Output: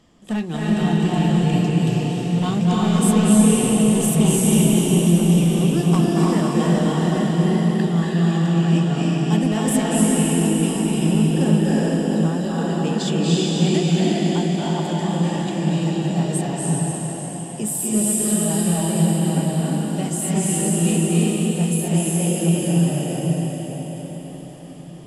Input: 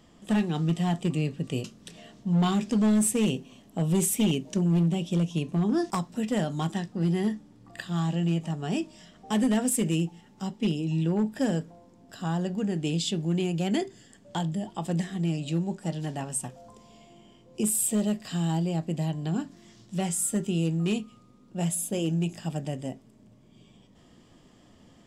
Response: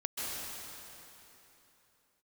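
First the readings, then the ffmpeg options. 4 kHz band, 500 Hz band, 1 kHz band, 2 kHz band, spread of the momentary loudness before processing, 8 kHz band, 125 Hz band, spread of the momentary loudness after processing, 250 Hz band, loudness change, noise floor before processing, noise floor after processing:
+9.0 dB, +10.0 dB, +9.5 dB, +9.0 dB, 12 LU, +9.0 dB, +10.0 dB, 7 LU, +9.5 dB, +9.0 dB, -57 dBFS, -32 dBFS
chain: -filter_complex "[1:a]atrim=start_sample=2205,asetrate=24696,aresample=44100[a];[0:a][a]afir=irnorm=-1:irlink=0"

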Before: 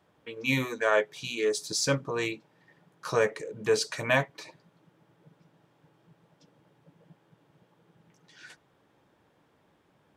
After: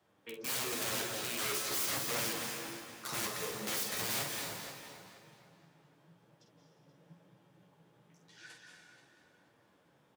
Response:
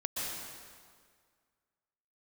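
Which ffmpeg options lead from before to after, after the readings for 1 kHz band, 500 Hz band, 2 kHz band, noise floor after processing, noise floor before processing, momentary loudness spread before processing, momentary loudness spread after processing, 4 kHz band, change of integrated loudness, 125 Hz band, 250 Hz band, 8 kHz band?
-7.0 dB, -15.0 dB, -9.0 dB, -69 dBFS, -67 dBFS, 13 LU, 18 LU, -2.0 dB, -6.5 dB, -12.5 dB, -10.0 dB, +0.5 dB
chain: -filter_complex "[0:a]acrossover=split=360|3000[a][b][c];[b]acompressor=threshold=-33dB:ratio=2.5[d];[a][d][c]amix=inputs=3:normalize=0,aeval=exprs='(mod(26.6*val(0)+1,2)-1)/26.6':c=same,highpass=92,highshelf=f=5.4k:g=5.5,asplit=2[e][f];[f]adelay=478,lowpass=f=4.6k:p=1,volume=-11dB,asplit=2[g][h];[h]adelay=478,lowpass=f=4.6k:p=1,volume=0.31,asplit=2[i][j];[j]adelay=478,lowpass=f=4.6k:p=1,volume=0.31[k];[e][g][i][k]amix=inputs=4:normalize=0,asplit=2[l][m];[1:a]atrim=start_sample=2205,adelay=48[n];[m][n]afir=irnorm=-1:irlink=0,volume=-4.5dB[o];[l][o]amix=inputs=2:normalize=0,flanger=delay=8.5:depth=6.2:regen=-29:speed=0.94:shape=sinusoidal,volume=-2dB"

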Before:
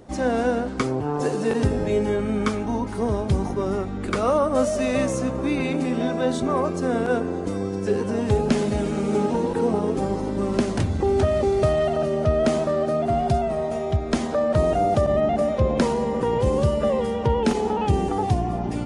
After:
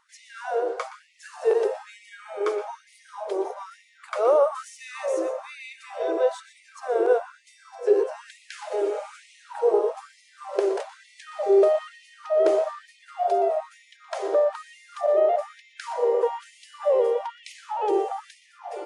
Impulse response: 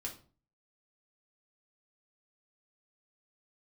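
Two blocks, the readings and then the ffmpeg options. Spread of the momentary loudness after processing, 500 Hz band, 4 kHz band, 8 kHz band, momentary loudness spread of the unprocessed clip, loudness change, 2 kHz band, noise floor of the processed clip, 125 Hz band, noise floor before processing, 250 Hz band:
20 LU, -1.0 dB, -8.0 dB, n/a, 5 LU, -2.0 dB, -6.0 dB, -57 dBFS, under -40 dB, -28 dBFS, -14.0 dB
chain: -filter_complex "[0:a]tiltshelf=f=800:g=9,bandreject=f=370.6:t=h:w=4,bandreject=f=741.2:t=h:w=4,bandreject=f=1.1118k:t=h:w=4,bandreject=f=1.4824k:t=h:w=4,bandreject=f=1.853k:t=h:w=4,bandreject=f=2.2236k:t=h:w=4,bandreject=f=2.5942k:t=h:w=4,bandreject=f=2.9648k:t=h:w=4,bandreject=f=3.3354k:t=h:w=4,bandreject=f=3.706k:t=h:w=4,bandreject=f=4.0766k:t=h:w=4,bandreject=f=4.4472k:t=h:w=4,bandreject=f=4.8178k:t=h:w=4,bandreject=f=5.1884k:t=h:w=4,bandreject=f=5.559k:t=h:w=4,bandreject=f=5.9296k:t=h:w=4,asplit=2[a][b];[1:a]atrim=start_sample=2205,adelay=119[c];[b][c]afir=irnorm=-1:irlink=0,volume=-10.5dB[d];[a][d]amix=inputs=2:normalize=0,afftfilt=real='re*gte(b*sr/1024,330*pow(1900/330,0.5+0.5*sin(2*PI*1.1*pts/sr)))':imag='im*gte(b*sr/1024,330*pow(1900/330,0.5+0.5*sin(2*PI*1.1*pts/sr)))':win_size=1024:overlap=0.75"

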